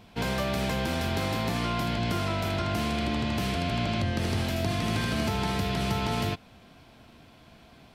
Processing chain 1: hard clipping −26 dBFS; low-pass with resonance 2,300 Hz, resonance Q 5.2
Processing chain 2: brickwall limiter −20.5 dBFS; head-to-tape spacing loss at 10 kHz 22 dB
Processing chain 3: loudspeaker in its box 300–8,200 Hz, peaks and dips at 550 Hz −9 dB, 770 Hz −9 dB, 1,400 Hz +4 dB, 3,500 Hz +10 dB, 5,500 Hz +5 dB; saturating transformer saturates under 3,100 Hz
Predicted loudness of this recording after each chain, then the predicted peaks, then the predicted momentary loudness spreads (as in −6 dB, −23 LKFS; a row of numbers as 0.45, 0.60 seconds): −26.5, −32.0, −33.0 LKFS; −16.5, −21.0, −18.0 dBFS; 2, 1, 9 LU